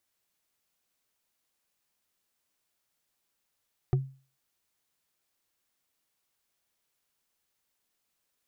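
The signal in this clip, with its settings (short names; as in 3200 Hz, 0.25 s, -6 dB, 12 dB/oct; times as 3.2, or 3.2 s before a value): wood hit, lowest mode 134 Hz, decay 0.37 s, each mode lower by 7 dB, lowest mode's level -18.5 dB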